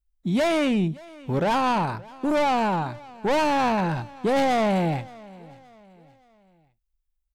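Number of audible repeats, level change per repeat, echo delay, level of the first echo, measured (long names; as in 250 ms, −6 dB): 2, −7.5 dB, 572 ms, −22.0 dB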